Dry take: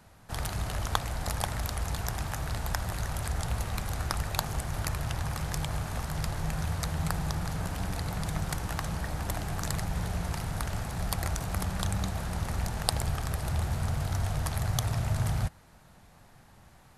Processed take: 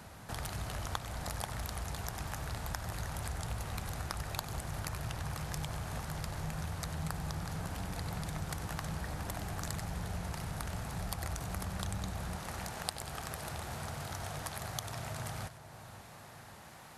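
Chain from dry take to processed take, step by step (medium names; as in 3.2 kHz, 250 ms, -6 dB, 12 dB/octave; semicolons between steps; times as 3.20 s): high-pass 54 Hz 6 dB/octave, from 12.36 s 340 Hz; compression 2:1, threshold -54 dBFS, peak gain reduction 18 dB; two-band feedback delay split 1.2 kHz, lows 541 ms, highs 95 ms, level -12.5 dB; trim +7 dB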